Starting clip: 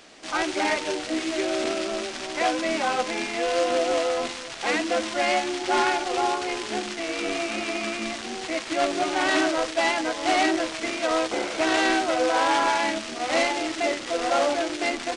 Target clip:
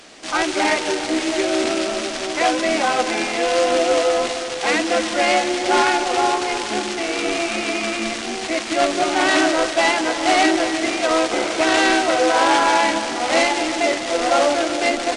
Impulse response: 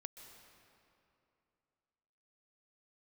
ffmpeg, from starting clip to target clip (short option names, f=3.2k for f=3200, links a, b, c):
-filter_complex "[0:a]asplit=2[a][b];[1:a]atrim=start_sample=2205,asetrate=29988,aresample=44100,highshelf=f=7.5k:g=6.5[c];[b][c]afir=irnorm=-1:irlink=0,volume=6dB[d];[a][d]amix=inputs=2:normalize=0,volume=-1.5dB"